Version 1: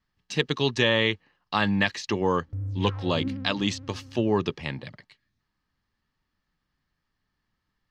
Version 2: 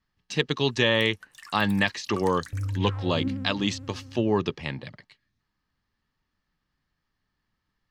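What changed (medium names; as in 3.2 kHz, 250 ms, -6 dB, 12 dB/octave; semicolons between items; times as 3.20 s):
first sound: unmuted; reverb: on, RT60 0.70 s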